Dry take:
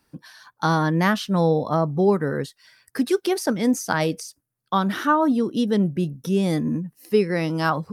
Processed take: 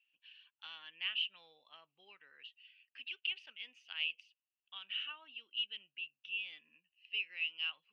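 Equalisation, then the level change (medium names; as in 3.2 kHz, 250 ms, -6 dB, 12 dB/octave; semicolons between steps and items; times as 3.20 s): Butterworth band-pass 2.8 kHz, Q 6.7; tilt EQ -3.5 dB/octave; +11.0 dB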